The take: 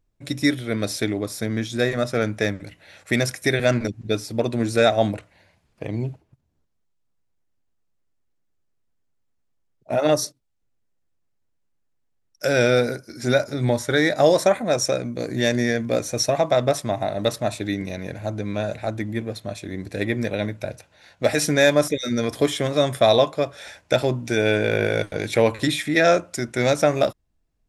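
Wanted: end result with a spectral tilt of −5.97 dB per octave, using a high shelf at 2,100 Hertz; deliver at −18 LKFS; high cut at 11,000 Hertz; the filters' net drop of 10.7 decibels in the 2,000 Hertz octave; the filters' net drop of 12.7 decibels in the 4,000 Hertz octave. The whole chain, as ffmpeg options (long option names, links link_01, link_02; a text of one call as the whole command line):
ffmpeg -i in.wav -af "lowpass=11000,equalizer=frequency=2000:width_type=o:gain=-9,highshelf=frequency=2100:gain=-6.5,equalizer=frequency=4000:width_type=o:gain=-7,volume=6dB" out.wav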